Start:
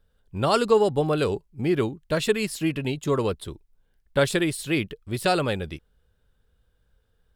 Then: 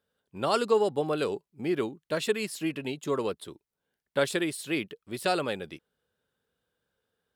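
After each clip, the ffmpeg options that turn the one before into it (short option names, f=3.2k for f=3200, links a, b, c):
-af "highpass=210,volume=-4.5dB"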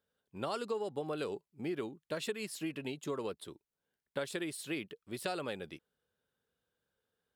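-af "acompressor=threshold=-29dB:ratio=4,volume=-5dB"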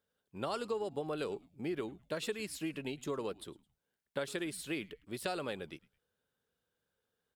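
-filter_complex "[0:a]asplit=3[a][b][c];[b]adelay=107,afreqshift=-140,volume=-23dB[d];[c]adelay=214,afreqshift=-280,volume=-32.4dB[e];[a][d][e]amix=inputs=3:normalize=0"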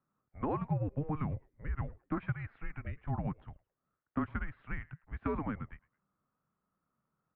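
-af "highpass=f=330:t=q:w=0.5412,highpass=f=330:t=q:w=1.307,lowpass=f=2.1k:t=q:w=0.5176,lowpass=f=2.1k:t=q:w=0.7071,lowpass=f=2.1k:t=q:w=1.932,afreqshift=-300,volume=4dB"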